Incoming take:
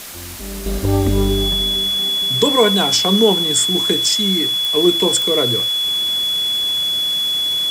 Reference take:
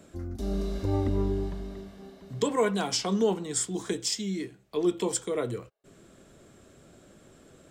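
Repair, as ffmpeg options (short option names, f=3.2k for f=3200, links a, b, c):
-af "adeclick=t=4,bandreject=f=3.4k:w=30,afwtdn=0.025,asetnsamples=n=441:p=0,asendcmd='0.66 volume volume -11dB',volume=0dB"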